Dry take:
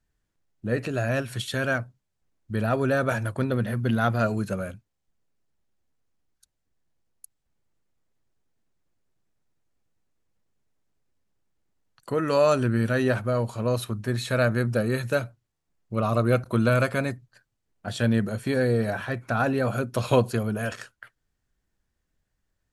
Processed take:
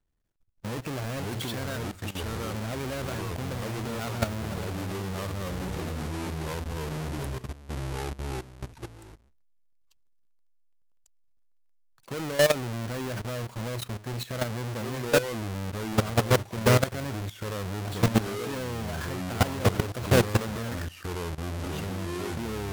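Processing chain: square wave that keeps the level; ever faster or slower copies 408 ms, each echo -3 st, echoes 3; level held to a coarse grid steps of 15 dB; trim -2.5 dB

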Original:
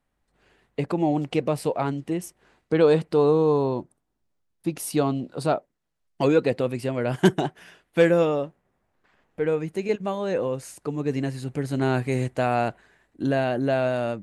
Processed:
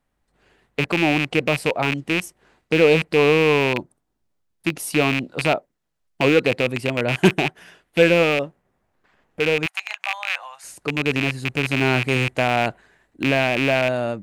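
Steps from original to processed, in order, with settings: rattle on loud lows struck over -31 dBFS, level -13 dBFS; 9.66–10.64 s: elliptic high-pass 730 Hz, stop band 40 dB; trim +2.5 dB

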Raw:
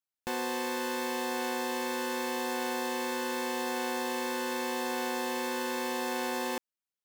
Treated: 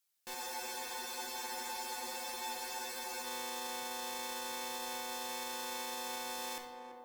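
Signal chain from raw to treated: high-pass 180 Hz 6 dB/octave; treble shelf 2.5 kHz +12 dB; peak limiter -31.5 dBFS, peak gain reduction 19.5 dB; valve stage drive 39 dB, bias 0.6; band-passed feedback delay 336 ms, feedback 81%, band-pass 520 Hz, level -4.5 dB; simulated room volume 330 m³, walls mixed, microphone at 0.77 m; spectral freeze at 0.37 s, 2.86 s; trim +4 dB

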